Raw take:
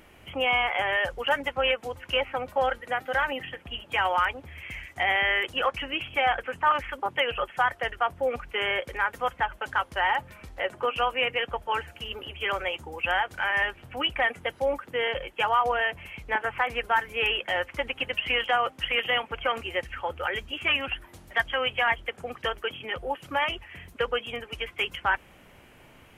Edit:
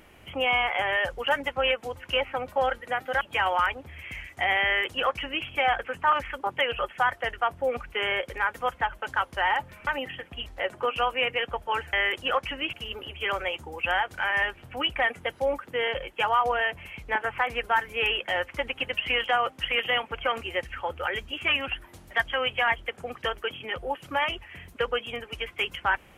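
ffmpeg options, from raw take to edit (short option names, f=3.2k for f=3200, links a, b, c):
-filter_complex "[0:a]asplit=6[a][b][c][d][e][f];[a]atrim=end=3.212[g];[b]atrim=start=3.798:end=10.462[h];[c]atrim=start=3.208:end=3.802[i];[d]atrim=start=10.458:end=11.932[j];[e]atrim=start=5.238:end=6.042[k];[f]atrim=start=11.928[l];[g][h]acrossfade=d=0.004:c1=hsin:c2=hsin[m];[m][i]acrossfade=d=0.004:c1=hsin:c2=hsin[n];[n][j]acrossfade=d=0.004:c1=hsin:c2=hsin[o];[o][k]acrossfade=d=0.004:c1=hsin:c2=hsin[p];[p][l]acrossfade=d=0.004:c1=hsin:c2=hsin"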